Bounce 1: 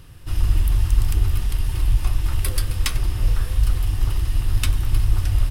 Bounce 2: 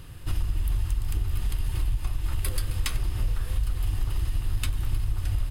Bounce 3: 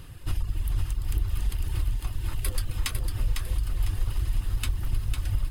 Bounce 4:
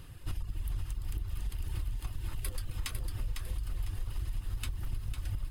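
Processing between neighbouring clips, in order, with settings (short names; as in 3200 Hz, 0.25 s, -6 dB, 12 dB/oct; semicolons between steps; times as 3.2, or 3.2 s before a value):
notch 5600 Hz, Q 8.7; compressor 6:1, threshold -23 dBFS, peak gain reduction 13.5 dB; gain +1 dB
reverb removal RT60 0.68 s; lo-fi delay 0.502 s, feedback 35%, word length 9-bit, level -6 dB
compressor, threshold -25 dBFS, peak gain reduction 7 dB; gain -5 dB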